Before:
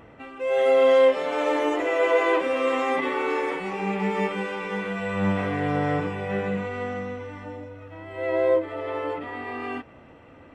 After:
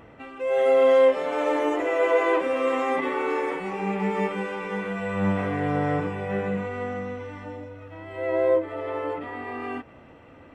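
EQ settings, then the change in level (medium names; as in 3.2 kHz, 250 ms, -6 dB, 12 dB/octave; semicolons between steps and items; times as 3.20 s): dynamic bell 4 kHz, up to -5 dB, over -45 dBFS, Q 0.81; 0.0 dB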